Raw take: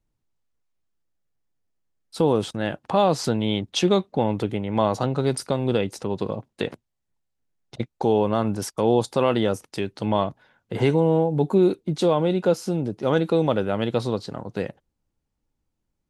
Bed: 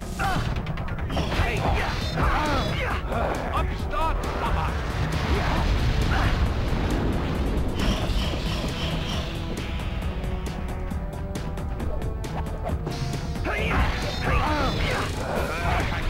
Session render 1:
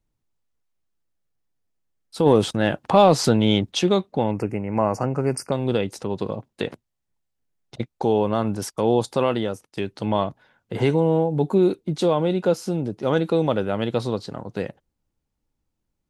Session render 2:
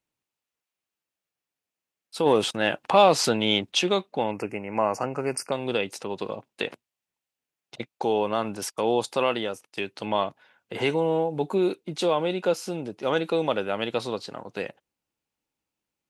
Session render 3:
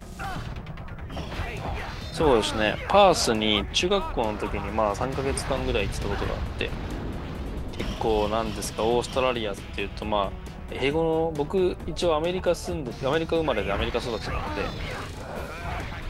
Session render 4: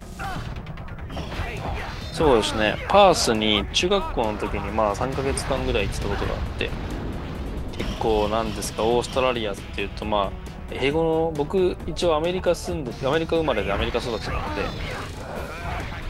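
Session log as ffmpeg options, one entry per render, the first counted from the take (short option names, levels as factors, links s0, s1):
-filter_complex "[0:a]asplit=3[s0][s1][s2];[s0]afade=t=out:st=2.25:d=0.02[s3];[s1]acontrast=43,afade=t=in:st=2.25:d=0.02,afade=t=out:st=3.71:d=0.02[s4];[s2]afade=t=in:st=3.71:d=0.02[s5];[s3][s4][s5]amix=inputs=3:normalize=0,asettb=1/sr,asplit=3[s6][s7][s8];[s6]atrim=end=4.314[s9];[s7]atrim=start=4.31:end=5.52,asetpts=PTS-STARTPTS,afade=t=in:d=0.004:c=qsin,afade=t=out:st=1.206:d=0.004:c=qsin,asuperstop=centerf=3600:order=8:qfactor=1.8[s10];[s8]atrim=start=5.516[s11];[s9][s10]acrossfade=d=0.004:c1=hsin:c2=qsin[s12];[s12][s11]acrossfade=d=0.004:c1=qsin:c2=hsin,asplit=2[s13][s14];[s13]atrim=end=9.77,asetpts=PTS-STARTPTS,afade=t=out:st=9.21:d=0.56:silence=0.223872[s15];[s14]atrim=start=9.77,asetpts=PTS-STARTPTS,afade=t=in:d=0.004:c=hsin:silence=0.223872[s16];[s15][s16]concat=n=2:v=0:a=1"
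-af "highpass=f=540:p=1,equalizer=f=2600:t=o:w=0.5:g=5.5"
-filter_complex "[1:a]volume=0.398[s0];[0:a][s0]amix=inputs=2:normalize=0"
-af "volume=1.33"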